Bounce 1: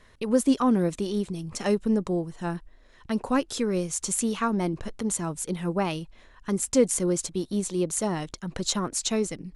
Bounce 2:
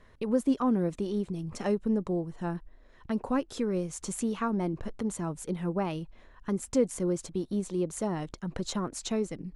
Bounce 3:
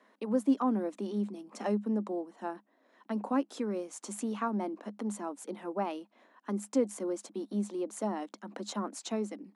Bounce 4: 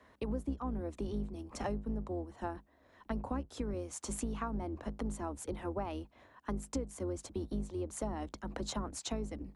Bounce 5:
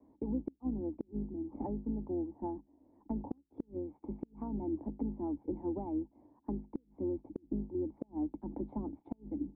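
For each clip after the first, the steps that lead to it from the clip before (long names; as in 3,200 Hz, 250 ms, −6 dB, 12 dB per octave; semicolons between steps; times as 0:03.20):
high-shelf EQ 2,300 Hz −10.5 dB; in parallel at −0.5 dB: downward compressor, threshold −31 dBFS, peak gain reduction 15 dB; on the sum: level −6 dB
Chebyshev high-pass with heavy ripple 200 Hz, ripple 6 dB; level +1 dB
sub-octave generator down 2 octaves, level +1 dB; downward compressor 8 to 1, threshold −35 dBFS, peak gain reduction 17 dB; level +1.5 dB
formant resonators in series u; gate with flip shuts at −35 dBFS, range −33 dB; level +10.5 dB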